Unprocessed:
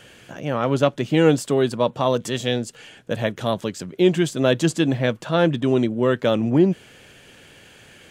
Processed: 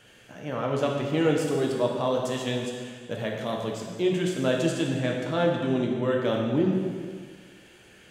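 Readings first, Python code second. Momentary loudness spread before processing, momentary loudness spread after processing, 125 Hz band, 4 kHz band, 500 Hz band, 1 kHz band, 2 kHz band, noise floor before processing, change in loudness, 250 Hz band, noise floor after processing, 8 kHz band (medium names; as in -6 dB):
9 LU, 11 LU, -6.5 dB, -6.0 dB, -5.5 dB, -5.5 dB, -5.5 dB, -49 dBFS, -6.0 dB, -6.0 dB, -53 dBFS, -6.0 dB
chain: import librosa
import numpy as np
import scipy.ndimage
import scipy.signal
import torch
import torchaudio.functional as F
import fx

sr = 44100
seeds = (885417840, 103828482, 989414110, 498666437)

y = fx.rev_plate(x, sr, seeds[0], rt60_s=1.8, hf_ratio=0.85, predelay_ms=0, drr_db=-1.0)
y = y * librosa.db_to_amplitude(-9.0)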